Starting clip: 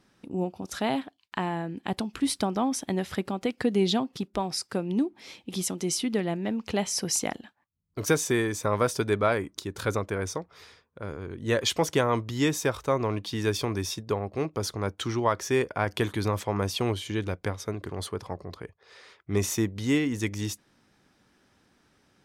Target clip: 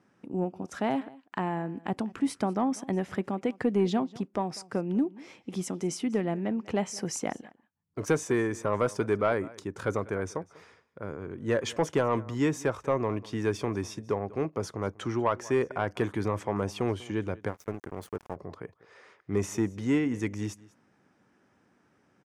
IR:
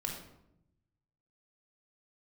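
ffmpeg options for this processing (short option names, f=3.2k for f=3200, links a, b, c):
-filter_complex "[0:a]highpass=110,lowpass=6.4k,aecho=1:1:194:0.0794,asettb=1/sr,asplit=3[a][b][c];[a]atrim=end=17.484[d];[b]atrim=start=17.48:end=18.36,asetpts=PTS-STARTPTS,afade=t=in:d=0.004:c=qsin,afade=t=out:st=0.876:d=0.004:c=qsin,aeval=exprs='sgn(val(0))*max(abs(val(0))-0.00841,0)':c=same[e];[c]atrim=start=18.356[f];[d][e]acrossfade=d=0.004:c1=hsin:c2=qsin[g];[g][f]acrossfade=d=0.004:c1=qsin:c2=hsin,equalizer=f=4k:w=1.3:g=-13.5,asoftclip=type=tanh:threshold=-14.5dB"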